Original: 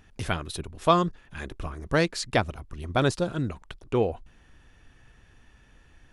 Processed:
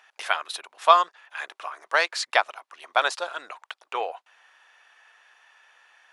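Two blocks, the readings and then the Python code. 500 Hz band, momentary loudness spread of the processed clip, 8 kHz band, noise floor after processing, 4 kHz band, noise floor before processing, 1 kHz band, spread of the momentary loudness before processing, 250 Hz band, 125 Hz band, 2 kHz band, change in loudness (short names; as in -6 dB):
-2.5 dB, 20 LU, +1.0 dB, -79 dBFS, +4.5 dB, -58 dBFS, +6.5 dB, 16 LU, -23.0 dB, under -40 dB, +6.5 dB, +2.5 dB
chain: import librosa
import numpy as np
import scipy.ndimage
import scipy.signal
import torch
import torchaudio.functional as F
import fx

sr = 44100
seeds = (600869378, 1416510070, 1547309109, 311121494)

y = scipy.signal.sosfilt(scipy.signal.butter(4, 740.0, 'highpass', fs=sr, output='sos'), x)
y = fx.high_shelf(y, sr, hz=6000.0, db=-10.5)
y = y * 10.0 ** (7.5 / 20.0)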